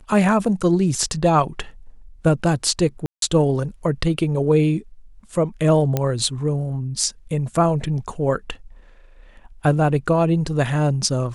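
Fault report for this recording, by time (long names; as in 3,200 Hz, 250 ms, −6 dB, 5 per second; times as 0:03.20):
0:03.06–0:03.22: drop-out 162 ms
0:05.97: click −7 dBFS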